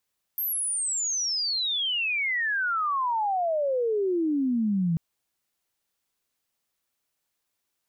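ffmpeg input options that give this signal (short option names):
-f lavfi -i "aevalsrc='pow(10,(-25.5+4*t/4.59)/20)*sin(2*PI*13000*4.59/log(160/13000)*(exp(log(160/13000)*t/4.59)-1))':d=4.59:s=44100"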